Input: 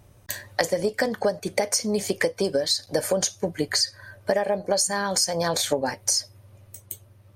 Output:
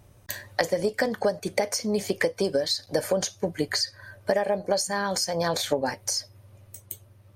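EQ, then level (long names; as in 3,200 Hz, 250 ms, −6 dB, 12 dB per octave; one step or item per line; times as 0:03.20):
dynamic equaliser 8,500 Hz, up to −7 dB, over −39 dBFS, Q 0.93
−1.0 dB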